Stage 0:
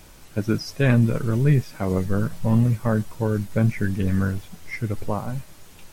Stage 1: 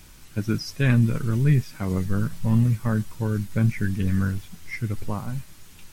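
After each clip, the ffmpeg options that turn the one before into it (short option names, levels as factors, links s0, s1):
-af "equalizer=f=590:t=o:w=1.5:g=-9"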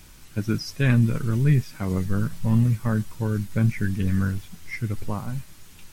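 -af anull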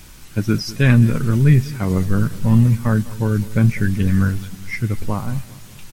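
-filter_complex "[0:a]asplit=2[s0][s1];[s1]adelay=201,lowpass=f=2000:p=1,volume=0.126,asplit=2[s2][s3];[s3]adelay=201,lowpass=f=2000:p=1,volume=0.55,asplit=2[s4][s5];[s5]adelay=201,lowpass=f=2000:p=1,volume=0.55,asplit=2[s6][s7];[s7]adelay=201,lowpass=f=2000:p=1,volume=0.55,asplit=2[s8][s9];[s9]adelay=201,lowpass=f=2000:p=1,volume=0.55[s10];[s0][s2][s4][s6][s8][s10]amix=inputs=6:normalize=0,volume=2.11"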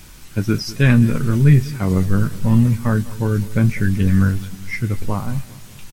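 -filter_complex "[0:a]asplit=2[s0][s1];[s1]adelay=21,volume=0.224[s2];[s0][s2]amix=inputs=2:normalize=0"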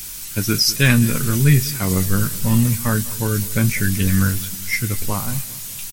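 -af "crystalizer=i=6.5:c=0,volume=0.75"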